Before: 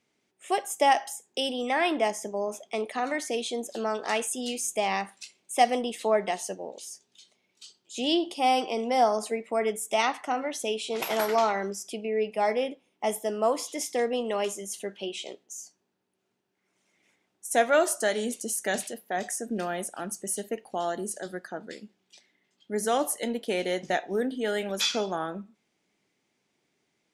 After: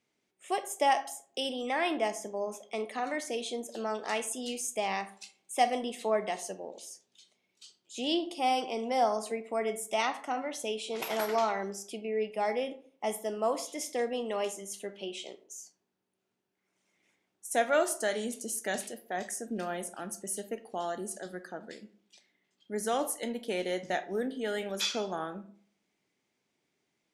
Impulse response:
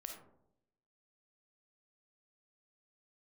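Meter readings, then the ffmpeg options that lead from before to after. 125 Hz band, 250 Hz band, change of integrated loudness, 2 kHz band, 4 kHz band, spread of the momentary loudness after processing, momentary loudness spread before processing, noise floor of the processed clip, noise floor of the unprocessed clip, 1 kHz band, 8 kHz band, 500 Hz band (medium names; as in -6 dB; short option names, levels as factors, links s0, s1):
no reading, -4.5 dB, -4.5 dB, -4.5 dB, -4.5 dB, 12 LU, 12 LU, -81 dBFS, -76 dBFS, -4.5 dB, -4.5 dB, -4.5 dB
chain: -filter_complex "[0:a]asplit=2[s0][s1];[1:a]atrim=start_sample=2205,asetrate=74970,aresample=44100[s2];[s1][s2]afir=irnorm=-1:irlink=0,volume=1.5[s3];[s0][s3]amix=inputs=2:normalize=0,volume=0.398"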